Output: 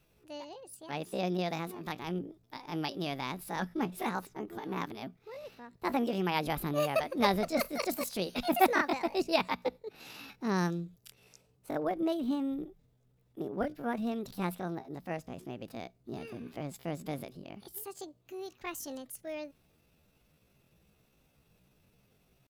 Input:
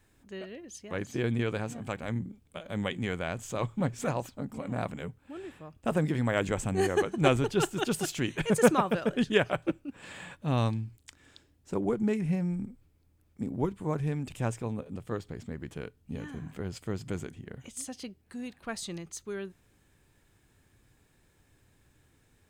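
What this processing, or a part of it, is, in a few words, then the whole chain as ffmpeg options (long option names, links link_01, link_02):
chipmunk voice: -af "asetrate=68011,aresample=44100,atempo=0.64842,volume=-3dB"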